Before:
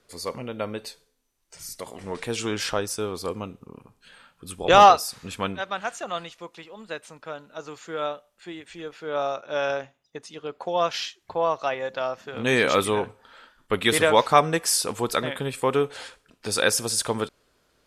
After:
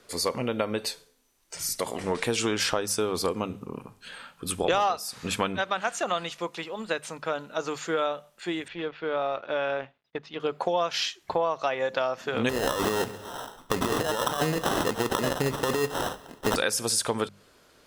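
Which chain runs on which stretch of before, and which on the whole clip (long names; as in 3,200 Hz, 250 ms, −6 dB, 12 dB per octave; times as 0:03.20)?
0:08.68–0:10.40: mu-law and A-law mismatch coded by A + low-pass filter 3,800 Hz 24 dB per octave + downward compressor 2 to 1, threshold −35 dBFS
0:12.49–0:16.56: compressor whose output falls as the input rises −26 dBFS + sample-rate reduction 2,300 Hz + repeating echo 133 ms, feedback 54%, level −23 dB
whole clip: low-shelf EQ 80 Hz −7 dB; mains-hum notches 50/100/150/200 Hz; downward compressor 6 to 1, threshold −31 dBFS; level +8 dB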